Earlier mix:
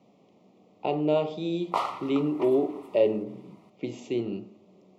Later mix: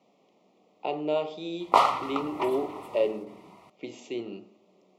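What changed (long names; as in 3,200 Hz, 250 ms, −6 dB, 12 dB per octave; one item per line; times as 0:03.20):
speech: add high-pass filter 540 Hz 6 dB per octave
background +8.0 dB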